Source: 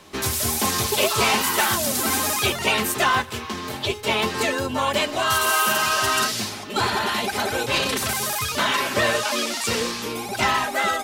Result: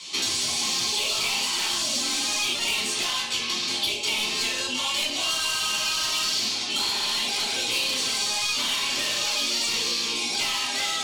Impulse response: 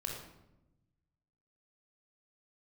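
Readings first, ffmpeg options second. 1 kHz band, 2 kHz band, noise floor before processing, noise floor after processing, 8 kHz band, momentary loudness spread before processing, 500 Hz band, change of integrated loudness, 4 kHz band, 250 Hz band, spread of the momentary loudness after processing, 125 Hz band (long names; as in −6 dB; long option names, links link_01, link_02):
−11.0 dB, −5.5 dB, −34 dBFS, −29 dBFS, −1.0 dB, 6 LU, −13.0 dB, −2.0 dB, +3.0 dB, −9.5 dB, 2 LU, −15.5 dB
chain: -filter_complex "[0:a]asplit=2[link_01][link_02];[link_02]alimiter=limit=-16.5dB:level=0:latency=1,volume=1.5dB[link_03];[link_01][link_03]amix=inputs=2:normalize=0,highpass=190,equalizer=frequency=200:width_type=q:width=4:gain=-8,equalizer=frequency=1700:width_type=q:width=4:gain=8,equalizer=frequency=2700:width_type=q:width=4:gain=4,equalizer=frequency=4200:width_type=q:width=4:gain=6,lowpass=frequency=8000:width=0.5412,lowpass=frequency=8000:width=1.3066,asoftclip=type=tanh:threshold=-14dB,aexciter=amount=5.7:drive=7.5:freq=2500[link_04];[1:a]atrim=start_sample=2205,asetrate=83790,aresample=44100[link_05];[link_04][link_05]afir=irnorm=-1:irlink=0,acrossover=split=1500|5400[link_06][link_07][link_08];[link_06]acompressor=threshold=-28dB:ratio=4[link_09];[link_07]acompressor=threshold=-21dB:ratio=4[link_10];[link_08]acompressor=threshold=-29dB:ratio=4[link_11];[link_09][link_10][link_11]amix=inputs=3:normalize=0,volume=-6dB"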